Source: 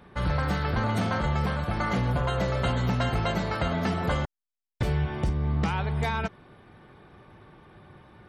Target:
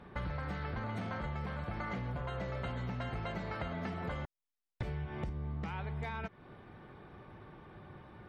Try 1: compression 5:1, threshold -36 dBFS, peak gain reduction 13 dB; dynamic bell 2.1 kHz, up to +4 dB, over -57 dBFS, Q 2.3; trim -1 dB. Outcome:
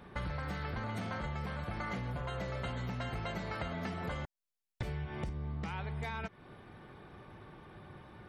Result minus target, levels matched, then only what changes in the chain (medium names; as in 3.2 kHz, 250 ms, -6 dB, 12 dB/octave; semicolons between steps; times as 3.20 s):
4 kHz band +3.5 dB
add after compression: low-pass 2.9 kHz 6 dB/octave